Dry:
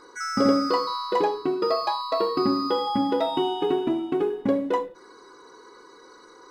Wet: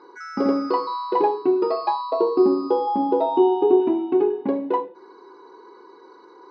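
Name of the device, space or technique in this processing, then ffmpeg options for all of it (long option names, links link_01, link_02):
kitchen radio: -filter_complex "[0:a]highpass=220,equalizer=frequency=370:width_type=q:width=4:gain=8,equalizer=frequency=550:width_type=q:width=4:gain=-3,equalizer=frequency=900:width_type=q:width=4:gain=8,equalizer=frequency=1300:width_type=q:width=4:gain=-6,equalizer=frequency=1900:width_type=q:width=4:gain=-6,equalizer=frequency=3300:width_type=q:width=4:gain=-9,lowpass=frequency=3900:width=0.5412,lowpass=frequency=3900:width=1.3066,asettb=1/sr,asplit=3[link_01][link_02][link_03];[link_01]atrim=end=2.104[link_04];[link_02]atrim=start=2.1:end=3.8,asetpts=PTS-STARTPTS,afade=type=in:duration=0.004:curve=qsin,afade=type=out:start_time=1.696:duration=0.004:curve=qsin,equalizer=frequency=125:width_type=o:width=1:gain=-4,equalizer=frequency=500:width_type=o:width=1:gain=5,equalizer=frequency=2000:width_type=o:width=1:gain=-11,equalizer=frequency=8000:width_type=o:width=1:gain=-5[link_05];[link_03]atrim=start=3.796[link_06];[link_04][link_05]acrossfade=duration=0.004:curve1=hsin:curve2=qsin[link_07];[link_07][link_06]acrossfade=duration=0.004:curve1=qsin:curve2=hsin"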